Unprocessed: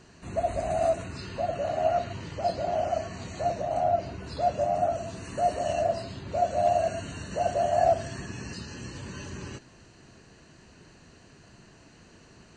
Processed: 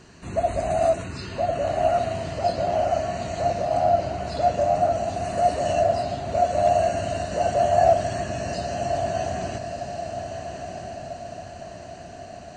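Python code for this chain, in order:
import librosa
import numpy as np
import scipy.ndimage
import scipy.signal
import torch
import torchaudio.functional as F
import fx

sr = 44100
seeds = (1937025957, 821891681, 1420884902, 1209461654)

y = fx.echo_diffused(x, sr, ms=1273, feedback_pct=53, wet_db=-7)
y = y * librosa.db_to_amplitude(4.5)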